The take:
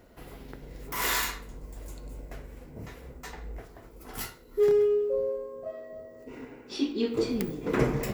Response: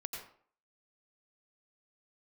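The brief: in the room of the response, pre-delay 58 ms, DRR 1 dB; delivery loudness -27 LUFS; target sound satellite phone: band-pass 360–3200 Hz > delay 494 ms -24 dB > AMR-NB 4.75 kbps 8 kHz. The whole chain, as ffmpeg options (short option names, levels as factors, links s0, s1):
-filter_complex "[0:a]asplit=2[s0][s1];[1:a]atrim=start_sample=2205,adelay=58[s2];[s1][s2]afir=irnorm=-1:irlink=0,volume=0.944[s3];[s0][s3]amix=inputs=2:normalize=0,highpass=360,lowpass=3200,aecho=1:1:494:0.0631,volume=1.33" -ar 8000 -c:a libopencore_amrnb -b:a 4750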